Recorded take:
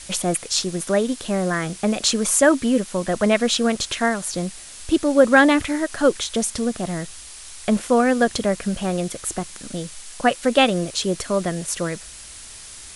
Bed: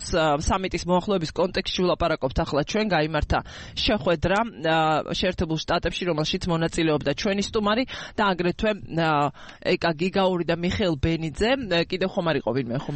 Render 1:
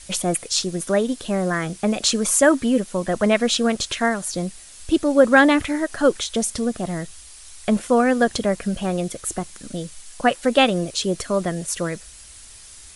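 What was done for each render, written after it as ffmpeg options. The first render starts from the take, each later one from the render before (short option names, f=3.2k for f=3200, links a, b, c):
-af "afftdn=nr=6:nf=-40"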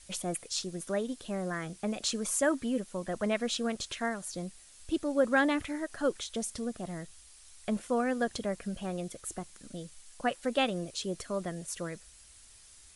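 -af "volume=-12.5dB"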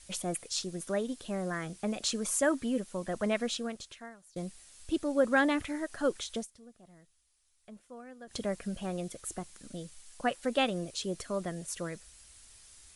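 -filter_complex "[0:a]asplit=4[a][b][c][d];[a]atrim=end=4.36,asetpts=PTS-STARTPTS,afade=t=out:st=3.42:d=0.94:c=qua:silence=0.105925[e];[b]atrim=start=4.36:end=6.47,asetpts=PTS-STARTPTS,afade=t=in:d=0.004:c=hsin:silence=0.105925,afade=t=out:st=1.98:d=0.13:c=qsin:silence=0.11885[f];[c]atrim=start=6.47:end=8.27,asetpts=PTS-STARTPTS,volume=-18.5dB[g];[d]atrim=start=8.27,asetpts=PTS-STARTPTS,afade=t=in:d=0.13:c=qsin:silence=0.11885[h];[e][f][g][h]concat=n=4:v=0:a=1"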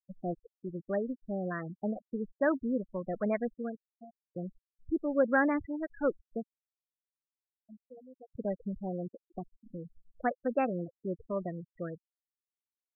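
-af "lowpass=f=2k:w=0.5412,lowpass=f=2k:w=1.3066,afftfilt=real='re*gte(hypot(re,im),0.0316)':imag='im*gte(hypot(re,im),0.0316)':win_size=1024:overlap=0.75"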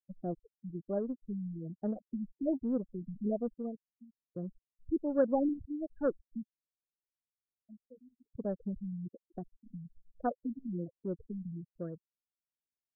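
-af "adynamicsmooth=sensitivity=0.5:basefreq=600,afftfilt=real='re*lt(b*sr/1024,250*pow(1900/250,0.5+0.5*sin(2*PI*1.2*pts/sr)))':imag='im*lt(b*sr/1024,250*pow(1900/250,0.5+0.5*sin(2*PI*1.2*pts/sr)))':win_size=1024:overlap=0.75"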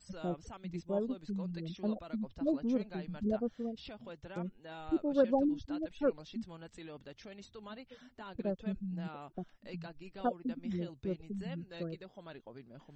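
-filter_complex "[1:a]volume=-26.5dB[a];[0:a][a]amix=inputs=2:normalize=0"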